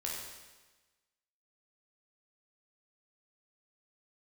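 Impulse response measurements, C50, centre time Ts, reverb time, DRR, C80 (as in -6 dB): 0.5 dB, 72 ms, 1.2 s, -3.5 dB, 3.0 dB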